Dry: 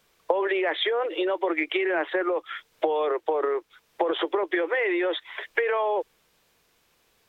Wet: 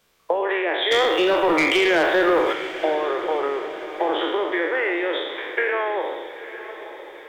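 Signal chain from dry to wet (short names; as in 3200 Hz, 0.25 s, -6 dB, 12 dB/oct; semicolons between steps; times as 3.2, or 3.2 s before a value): spectral trails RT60 1.11 s; 0.91–2.53 sample leveller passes 2; diffused feedback echo 0.924 s, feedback 52%, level -13 dB; gain -1 dB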